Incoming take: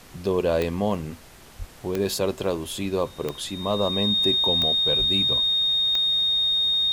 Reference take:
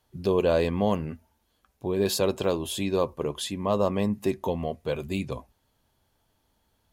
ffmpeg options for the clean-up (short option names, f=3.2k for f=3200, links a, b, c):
-filter_complex "[0:a]adeclick=t=4,bandreject=f=3.7k:w=30,asplit=3[a][b][c];[a]afade=t=out:st=1.58:d=0.02[d];[b]highpass=f=140:w=0.5412,highpass=f=140:w=1.3066,afade=t=in:st=1.58:d=0.02,afade=t=out:st=1.7:d=0.02[e];[c]afade=t=in:st=1.7:d=0.02[f];[d][e][f]amix=inputs=3:normalize=0,asplit=3[g][h][i];[g]afade=t=out:st=4.98:d=0.02[j];[h]highpass=f=140:w=0.5412,highpass=f=140:w=1.3066,afade=t=in:st=4.98:d=0.02,afade=t=out:st=5.1:d=0.02[k];[i]afade=t=in:st=5.1:d=0.02[l];[j][k][l]amix=inputs=3:normalize=0,afftdn=nr=25:nf=-46"